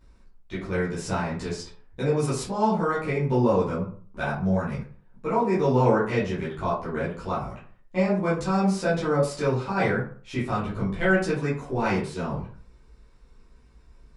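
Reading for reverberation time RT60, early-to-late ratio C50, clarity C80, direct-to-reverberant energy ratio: 0.45 s, 5.5 dB, 10.5 dB, -10.5 dB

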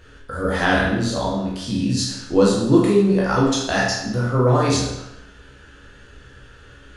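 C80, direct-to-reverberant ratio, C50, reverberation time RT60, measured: 4.5 dB, -6.0 dB, 1.0 dB, 0.85 s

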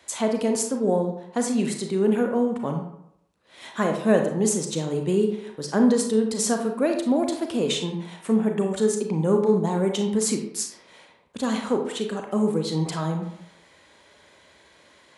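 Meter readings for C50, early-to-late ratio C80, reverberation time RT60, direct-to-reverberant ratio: 5.5 dB, 9.5 dB, 0.75 s, 3.5 dB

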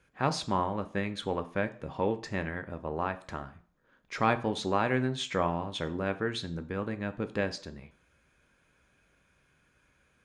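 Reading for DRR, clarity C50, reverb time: 9.5 dB, 16.5 dB, 0.50 s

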